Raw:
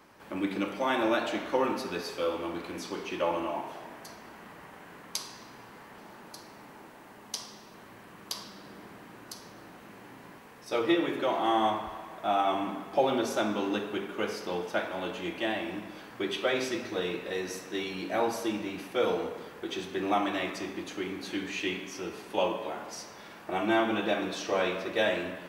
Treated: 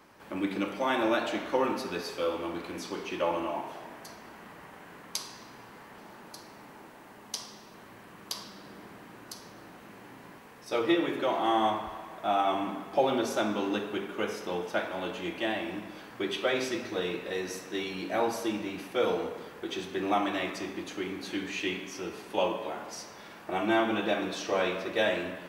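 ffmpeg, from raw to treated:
-filter_complex "[0:a]asettb=1/sr,asplit=3[a][b][c];[a]atrim=end=14.234[d];[b]atrim=start=14.23:end=14.66,asetpts=PTS-STARTPTS,afade=t=in:d=0.004:c=qsin,afade=t=out:st=0.426:d=0.004:c=qsin,bandreject=f=4.6k:w=5.3[e];[c]atrim=start=14.656[f];[d][e]acrossfade=d=0.004:c1=hsin:c2=qsin[g];[g][f]acrossfade=d=0.004:c1=qsin:c2=hsin"

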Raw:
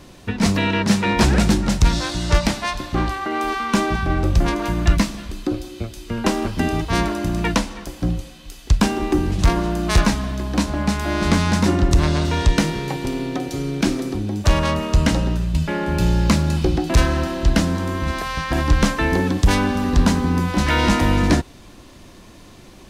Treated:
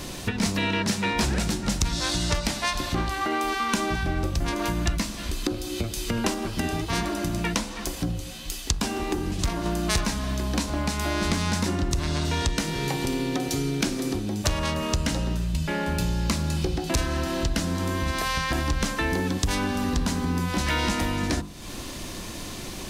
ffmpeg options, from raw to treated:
-filter_complex "[0:a]asettb=1/sr,asplit=3[a][b][c];[a]atrim=end=6.344[d];[b]atrim=start=6.34:end=9.66,asetpts=PTS-STARTPTS,afade=t=in:d=0.004:c=qsin,afade=t=out:st=3.316:d=0.004:c=qsin,flanger=delay=2.6:depth=9.6:regen=60:speed=1.3:shape=triangular[e];[c]atrim=start=9.656[f];[d][e]acrossfade=d=0.004:c1=hsin:c2=qsin[g];[g][f]acrossfade=d=0.004:c1=qsin:c2=hsin,acompressor=threshold=-33dB:ratio=4,highshelf=f=3.6k:g=7.5,bandreject=f=50.54:t=h:w=4,bandreject=f=101.08:t=h:w=4,bandreject=f=151.62:t=h:w=4,bandreject=f=202.16:t=h:w=4,bandreject=f=252.7:t=h:w=4,bandreject=f=303.24:t=h:w=4,bandreject=f=353.78:t=h:w=4,bandreject=f=404.32:t=h:w=4,bandreject=f=454.86:t=h:w=4,bandreject=f=505.4:t=h:w=4,bandreject=f=555.94:t=h:w=4,bandreject=f=606.48:t=h:w=4,bandreject=f=657.02:t=h:w=4,bandreject=f=707.56:t=h:w=4,bandreject=f=758.1:t=h:w=4,bandreject=f=808.64:t=h:w=4,bandreject=f=859.18:t=h:w=4,bandreject=f=909.72:t=h:w=4,bandreject=f=960.26:t=h:w=4,bandreject=f=1.0108k:t=h:w=4,bandreject=f=1.06134k:t=h:w=4,bandreject=f=1.11188k:t=h:w=4,bandreject=f=1.16242k:t=h:w=4,bandreject=f=1.21296k:t=h:w=4,bandreject=f=1.2635k:t=h:w=4,bandreject=f=1.31404k:t=h:w=4,bandreject=f=1.36458k:t=h:w=4,bandreject=f=1.41512k:t=h:w=4,bandreject=f=1.46566k:t=h:w=4,bandreject=f=1.5162k:t=h:w=4,bandreject=f=1.56674k:t=h:w=4,bandreject=f=1.61728k:t=h:w=4,bandreject=f=1.66782k:t=h:w=4,volume=7.5dB"

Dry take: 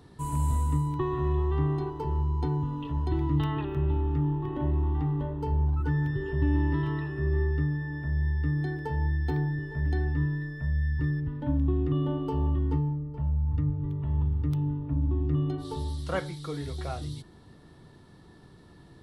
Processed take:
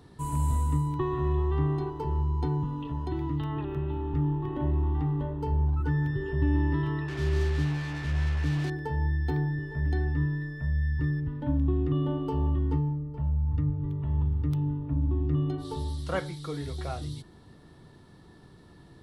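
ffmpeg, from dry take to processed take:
-filter_complex "[0:a]asettb=1/sr,asplit=3[a][b][c];[a]atrim=end=2.644[d];[b]atrim=start=2.64:end=4.14,asetpts=PTS-STARTPTS,afade=t=in:d=0.004:c=qsin,afade=t=out:st=1.496:d=0.004:c=qsin,acrossover=split=110|1200[e][f][g];[e]acompressor=threshold=-37dB:ratio=4[h];[f]acompressor=threshold=-29dB:ratio=4[i];[g]acompressor=threshold=-49dB:ratio=4[j];[h][i][j]amix=inputs=3:normalize=0[k];[c]atrim=start=4.136[l];[d][k]acrossfade=d=0.004:c1=hsin:c2=qsin[m];[m][l]acrossfade=d=0.004:c1=qsin:c2=hsin,asettb=1/sr,asplit=3[n][o][p];[n]atrim=end=7.084[q];[o]atrim=start=7.08:end=8.7,asetpts=PTS-STARTPTS,afade=t=in:d=0.004:c=qsin,afade=t=out:st=1.616:d=0.004:c=qsin,acrusher=bits=5:mix=0:aa=0.5[r];[p]atrim=start=8.696[s];[q][r]acrossfade=d=0.004:c1=hsin:c2=qsin[t];[t][s]acrossfade=d=0.004:c1=qsin:c2=hsin"

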